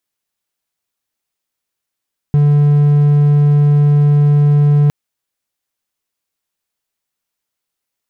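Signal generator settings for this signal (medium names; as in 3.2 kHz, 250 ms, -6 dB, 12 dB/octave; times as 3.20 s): tone triangle 146 Hz -5 dBFS 2.56 s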